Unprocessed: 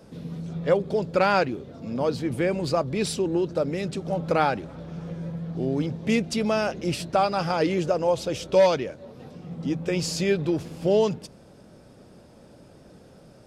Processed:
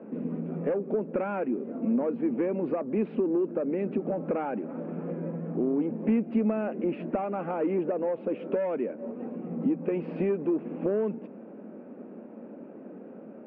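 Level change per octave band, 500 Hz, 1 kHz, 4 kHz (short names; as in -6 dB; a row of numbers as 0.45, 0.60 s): -5.0 dB, -10.0 dB, under -25 dB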